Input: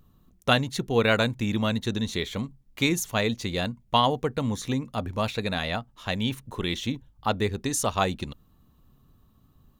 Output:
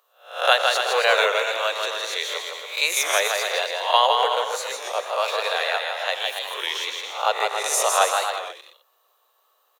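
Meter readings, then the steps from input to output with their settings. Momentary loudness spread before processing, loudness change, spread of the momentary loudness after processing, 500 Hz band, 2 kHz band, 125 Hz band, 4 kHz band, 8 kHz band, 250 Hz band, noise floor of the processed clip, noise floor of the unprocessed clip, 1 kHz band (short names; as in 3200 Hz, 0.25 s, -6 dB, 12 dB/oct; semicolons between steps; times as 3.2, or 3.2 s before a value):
9 LU, +5.0 dB, 10 LU, +4.5 dB, +7.5 dB, under -40 dB, +7.5 dB, +8.5 dB, under -25 dB, -66 dBFS, -61 dBFS, +7.5 dB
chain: spectral swells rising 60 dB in 0.44 s; steep high-pass 490 Hz 48 dB/oct; bouncing-ball echo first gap 0.16 s, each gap 0.75×, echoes 5; record warp 33 1/3 rpm, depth 100 cents; gain +3.5 dB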